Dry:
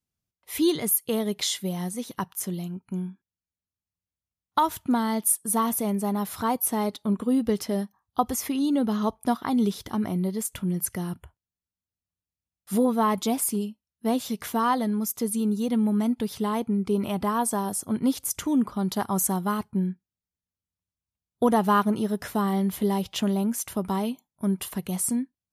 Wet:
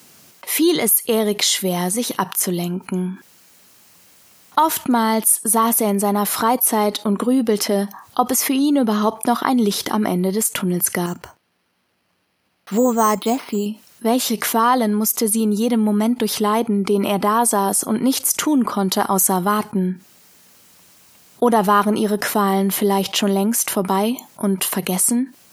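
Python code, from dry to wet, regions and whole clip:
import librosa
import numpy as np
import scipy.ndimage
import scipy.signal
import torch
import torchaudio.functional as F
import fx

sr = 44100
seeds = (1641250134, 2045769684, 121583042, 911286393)

y = fx.chain(x, sr, fx.resample_bad(factor=6, down='filtered', up='hold'),
    fx.upward_expand(threshold_db=-42.0, expansion=1.5), at=(11.06, 13.66))
y = scipy.signal.sosfilt(scipy.signal.butter(2, 260.0, 'highpass', fs=sr, output='sos'), y)
y = fx.notch(y, sr, hz=3500.0, q=22.0)
y = fx.env_flatten(y, sr, amount_pct=50)
y = F.gain(torch.from_numpy(y), 6.0).numpy()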